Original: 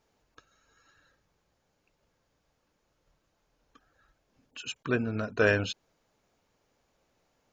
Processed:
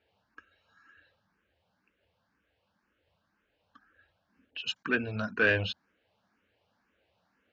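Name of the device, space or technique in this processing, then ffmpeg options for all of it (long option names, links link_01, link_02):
barber-pole phaser into a guitar amplifier: -filter_complex "[0:a]asettb=1/sr,asplit=3[link_01][link_02][link_03];[link_01]atrim=end=4.674[link_04];[link_02]atrim=start=4.67:end=5.37,asetpts=PTS-STARTPTS,afade=type=in:duration=0.004:curve=qsin,afade=type=out:start_time=0.696:duration=0.004:curve=qsin,aemphasis=mode=production:type=75fm[link_05];[link_03]atrim=start=5.366[link_06];[link_04][link_05]acrossfade=duration=0.004:curve1=hsin:curve2=qsin[link_07];[link_07][link_06]acrossfade=duration=0.004:curve1=qsin:curve2=hsin,asplit=2[link_08][link_09];[link_09]afreqshift=2[link_10];[link_08][link_10]amix=inputs=2:normalize=1,asoftclip=type=tanh:threshold=-22dB,highpass=82,equalizer=frequency=83:width_type=q:width=4:gain=8,equalizer=frequency=140:width_type=q:width=4:gain=-8,equalizer=frequency=200:width_type=q:width=4:gain=5,equalizer=frequency=390:width_type=q:width=4:gain=-3,equalizer=frequency=1600:width_type=q:width=4:gain=7,equalizer=frequency=2800:width_type=q:width=4:gain=5,lowpass=frequency=4500:width=0.5412,lowpass=frequency=4500:width=1.3066,volume=1.5dB"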